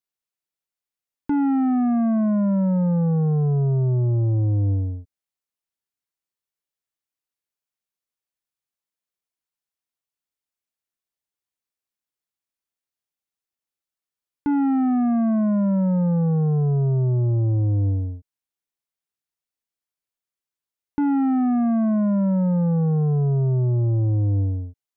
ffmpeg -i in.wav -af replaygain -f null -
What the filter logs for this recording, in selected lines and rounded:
track_gain = +4.8 dB
track_peak = 0.088